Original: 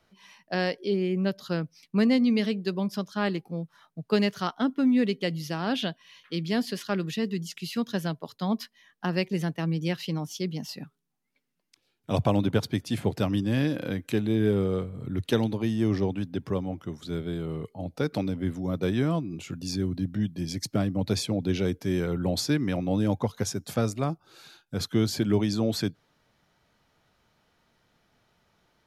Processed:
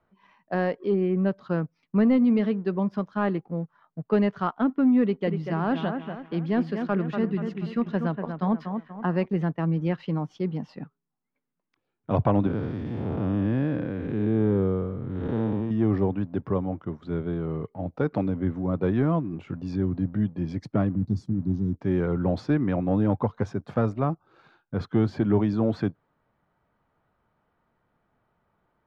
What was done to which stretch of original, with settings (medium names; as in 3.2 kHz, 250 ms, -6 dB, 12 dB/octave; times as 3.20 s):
5.03–9.26 s: bucket-brigade echo 240 ms, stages 4096, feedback 41%, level -7 dB
12.47–15.71 s: spectral blur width 270 ms
20.95–21.81 s: inverse Chebyshev band-stop 700–2200 Hz, stop band 60 dB
whole clip: peaking EQ 1.1 kHz +3.5 dB 0.72 oct; waveshaping leveller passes 1; low-pass 1.5 kHz 12 dB/octave; trim -1 dB